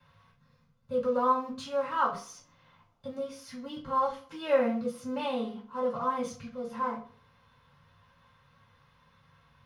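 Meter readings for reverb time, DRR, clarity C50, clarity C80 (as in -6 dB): 0.45 s, -5.5 dB, 9.5 dB, 14.0 dB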